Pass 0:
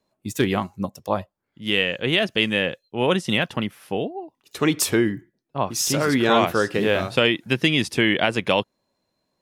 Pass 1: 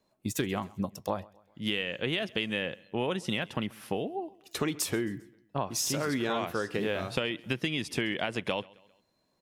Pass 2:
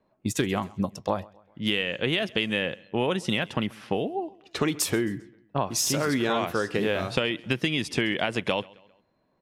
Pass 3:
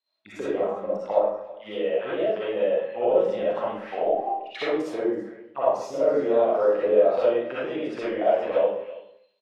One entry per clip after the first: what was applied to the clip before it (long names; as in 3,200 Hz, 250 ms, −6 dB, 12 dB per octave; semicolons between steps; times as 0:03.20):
downward compressor 6 to 1, threshold −28 dBFS, peak gain reduction 14 dB; repeating echo 133 ms, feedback 47%, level −23.5 dB
low-pass that shuts in the quiet parts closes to 2,000 Hz, open at −28.5 dBFS; level +5 dB
envelope filter 510–4,100 Hz, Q 5.1, down, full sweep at −22 dBFS; single-tap delay 331 ms −20 dB; comb and all-pass reverb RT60 0.62 s, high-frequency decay 0.7×, pre-delay 20 ms, DRR −10 dB; level +3 dB